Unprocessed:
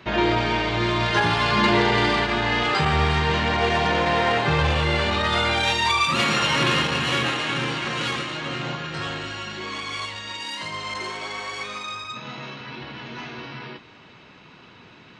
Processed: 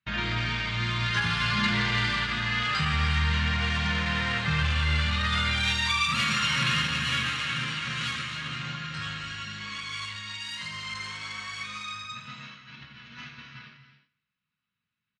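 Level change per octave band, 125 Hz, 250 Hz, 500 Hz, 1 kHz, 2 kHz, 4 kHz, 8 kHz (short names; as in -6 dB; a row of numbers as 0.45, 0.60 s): -2.5, -8.0, -19.0, -9.5, -3.5, -3.5, -3.5 dB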